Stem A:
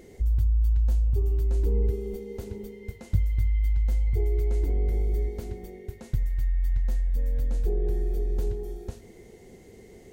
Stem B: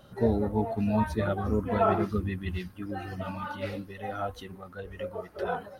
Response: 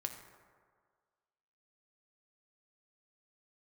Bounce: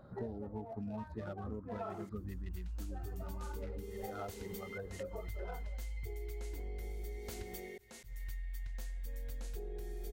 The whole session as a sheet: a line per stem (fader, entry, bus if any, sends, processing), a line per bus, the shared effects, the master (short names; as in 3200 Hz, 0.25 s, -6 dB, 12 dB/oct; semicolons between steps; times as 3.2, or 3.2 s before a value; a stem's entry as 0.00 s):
+0.5 dB, 1.90 s, no send, tilt shelf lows -8 dB, about 770 Hz; notches 60/120 Hz; auto swell 0.404 s
-1.5 dB, 0.00 s, no send, Wiener smoothing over 15 samples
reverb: off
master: compressor 10:1, threshold -39 dBFS, peak gain reduction 18 dB